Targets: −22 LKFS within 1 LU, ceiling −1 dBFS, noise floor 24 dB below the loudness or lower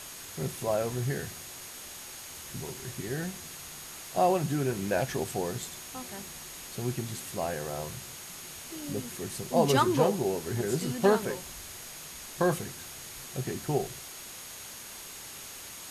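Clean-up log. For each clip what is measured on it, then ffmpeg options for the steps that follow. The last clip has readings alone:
interfering tone 6,600 Hz; level of the tone −50 dBFS; background noise floor −44 dBFS; target noise floor −57 dBFS; integrated loudness −32.5 LKFS; sample peak −10.5 dBFS; target loudness −22.0 LKFS
→ -af "bandreject=frequency=6600:width=30"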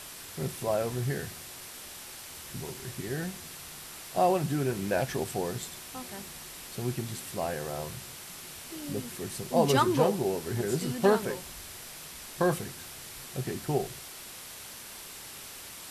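interfering tone none found; background noise floor −45 dBFS; target noise floor −57 dBFS
→ -af "afftdn=noise_reduction=12:noise_floor=-45"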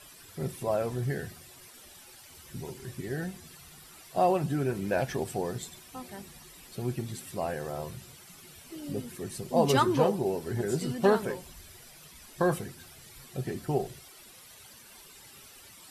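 background noise floor −52 dBFS; target noise floor −55 dBFS
→ -af "afftdn=noise_reduction=6:noise_floor=-52"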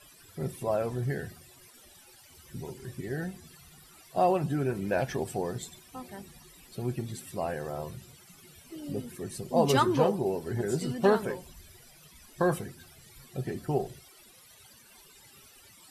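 background noise floor −56 dBFS; integrated loudness −31.0 LKFS; sample peak −11.0 dBFS; target loudness −22.0 LKFS
→ -af "volume=9dB"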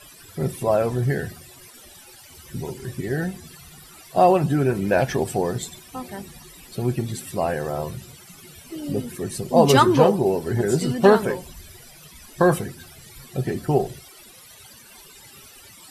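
integrated loudness −22.0 LKFS; sample peak −2.0 dBFS; background noise floor −47 dBFS

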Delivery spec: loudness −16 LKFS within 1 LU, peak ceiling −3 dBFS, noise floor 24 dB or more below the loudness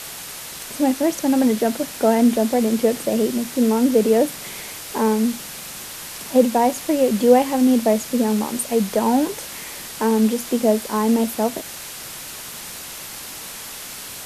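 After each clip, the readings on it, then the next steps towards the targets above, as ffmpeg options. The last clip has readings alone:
background noise floor −35 dBFS; target noise floor −44 dBFS; integrated loudness −19.5 LKFS; sample peak −2.0 dBFS; target loudness −16.0 LKFS
→ -af "afftdn=noise_reduction=9:noise_floor=-35"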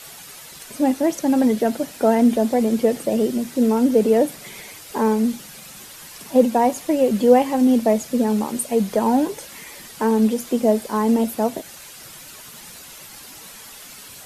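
background noise floor −41 dBFS; target noise floor −44 dBFS
→ -af "afftdn=noise_reduction=6:noise_floor=-41"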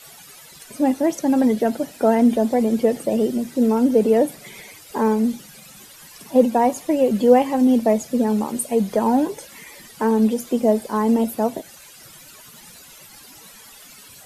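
background noise floor −45 dBFS; integrated loudness −19.5 LKFS; sample peak −2.0 dBFS; target loudness −16.0 LKFS
→ -af "volume=3.5dB,alimiter=limit=-3dB:level=0:latency=1"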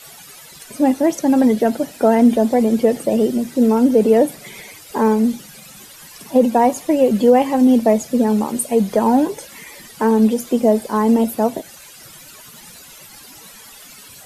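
integrated loudness −16.0 LKFS; sample peak −3.0 dBFS; background noise floor −41 dBFS

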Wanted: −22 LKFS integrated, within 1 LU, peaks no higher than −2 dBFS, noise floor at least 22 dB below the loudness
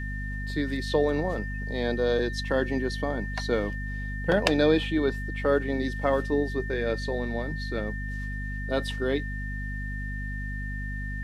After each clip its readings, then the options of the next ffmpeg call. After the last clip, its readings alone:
mains hum 50 Hz; hum harmonics up to 250 Hz; level of the hum −31 dBFS; interfering tone 1,800 Hz; level of the tone −37 dBFS; integrated loudness −28.5 LKFS; sample peak −5.0 dBFS; target loudness −22.0 LKFS
→ -af "bandreject=frequency=50:width_type=h:width=4,bandreject=frequency=100:width_type=h:width=4,bandreject=frequency=150:width_type=h:width=4,bandreject=frequency=200:width_type=h:width=4,bandreject=frequency=250:width_type=h:width=4"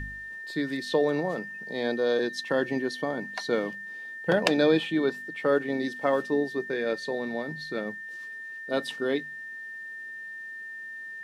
mains hum none found; interfering tone 1,800 Hz; level of the tone −37 dBFS
→ -af "bandreject=frequency=1800:width=30"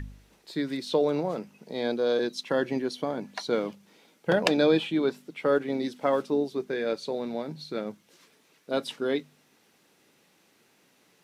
interfering tone none found; integrated loudness −28.5 LKFS; sample peak −5.5 dBFS; target loudness −22.0 LKFS
→ -af "volume=6.5dB,alimiter=limit=-2dB:level=0:latency=1"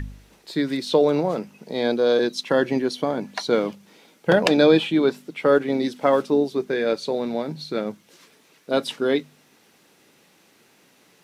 integrated loudness −22.0 LKFS; sample peak −2.0 dBFS; background noise floor −58 dBFS

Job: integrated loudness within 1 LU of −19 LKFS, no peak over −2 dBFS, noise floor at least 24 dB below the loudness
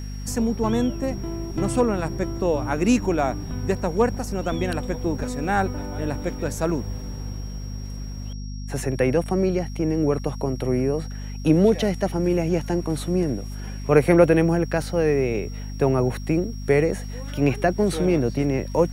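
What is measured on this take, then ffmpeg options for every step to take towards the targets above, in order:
mains hum 50 Hz; hum harmonics up to 250 Hz; level of the hum −29 dBFS; interfering tone 5,600 Hz; level of the tone −45 dBFS; integrated loudness −23.0 LKFS; sample peak −2.5 dBFS; target loudness −19.0 LKFS
→ -af "bandreject=frequency=50:width_type=h:width=6,bandreject=frequency=100:width_type=h:width=6,bandreject=frequency=150:width_type=h:width=6,bandreject=frequency=200:width_type=h:width=6,bandreject=frequency=250:width_type=h:width=6"
-af "bandreject=frequency=5600:width=30"
-af "volume=4dB,alimiter=limit=-2dB:level=0:latency=1"

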